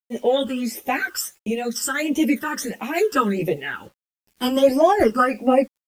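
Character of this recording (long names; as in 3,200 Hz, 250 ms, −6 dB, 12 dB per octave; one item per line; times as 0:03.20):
phaser sweep stages 12, 1.5 Hz, lowest notch 680–1,500 Hz
a quantiser's noise floor 10 bits, dither none
a shimmering, thickened sound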